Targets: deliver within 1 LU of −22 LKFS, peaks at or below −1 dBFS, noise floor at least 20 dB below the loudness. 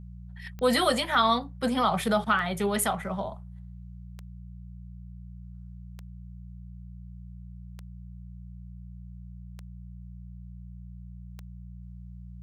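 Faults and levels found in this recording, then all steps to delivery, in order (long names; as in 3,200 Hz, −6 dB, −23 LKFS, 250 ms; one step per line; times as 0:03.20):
number of clicks 7; mains hum 60 Hz; hum harmonics up to 180 Hz; level of the hum −40 dBFS; integrated loudness −26.0 LKFS; sample peak −11.0 dBFS; target loudness −22.0 LKFS
→ click removal
hum removal 60 Hz, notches 3
level +4 dB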